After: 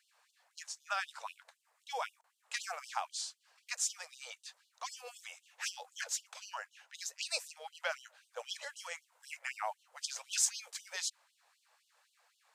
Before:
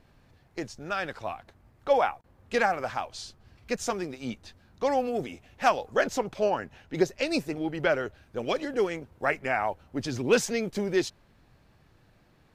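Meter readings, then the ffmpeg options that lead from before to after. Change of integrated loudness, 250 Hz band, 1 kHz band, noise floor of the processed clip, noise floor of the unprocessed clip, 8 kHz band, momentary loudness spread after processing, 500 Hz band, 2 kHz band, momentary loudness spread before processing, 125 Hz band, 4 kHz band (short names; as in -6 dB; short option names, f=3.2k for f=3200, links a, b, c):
-10.5 dB, under -40 dB, -13.5 dB, -77 dBFS, -62 dBFS, +4.0 dB, 14 LU, -23.0 dB, -10.0 dB, 13 LU, under -40 dB, -2.5 dB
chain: -filter_complex "[0:a]acrossover=split=140|3000[a][b][c];[b]acompressor=threshold=-27dB:ratio=6[d];[a][d][c]amix=inputs=3:normalize=0,equalizer=f=250:t=o:w=1:g=9,equalizer=f=500:t=o:w=1:g=-7,equalizer=f=1k:t=o:w=1:g=4,equalizer=f=8k:t=o:w=1:g=11,afftfilt=real='re*gte(b*sr/1024,430*pow(2900/430,0.5+0.5*sin(2*PI*3.9*pts/sr)))':imag='im*gte(b*sr/1024,430*pow(2900/430,0.5+0.5*sin(2*PI*3.9*pts/sr)))':win_size=1024:overlap=0.75,volume=-4.5dB"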